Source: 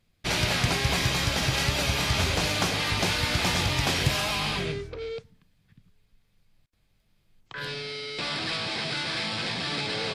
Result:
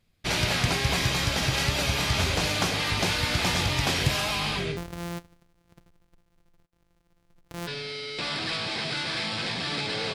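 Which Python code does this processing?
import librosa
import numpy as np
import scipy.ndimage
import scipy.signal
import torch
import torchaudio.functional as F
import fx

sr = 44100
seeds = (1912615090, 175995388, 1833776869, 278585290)

y = fx.sample_sort(x, sr, block=256, at=(4.76, 7.66), fade=0.02)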